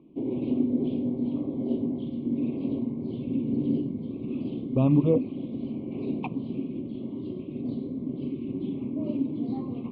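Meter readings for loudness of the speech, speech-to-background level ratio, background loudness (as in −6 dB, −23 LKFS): −24.0 LKFS, 7.0 dB, −31.0 LKFS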